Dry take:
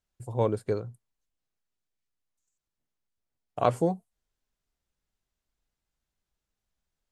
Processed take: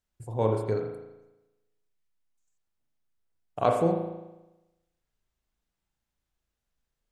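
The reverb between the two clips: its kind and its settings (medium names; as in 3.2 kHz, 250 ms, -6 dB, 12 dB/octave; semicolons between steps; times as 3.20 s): spring tank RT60 1 s, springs 36 ms, chirp 50 ms, DRR 2 dB; trim -1 dB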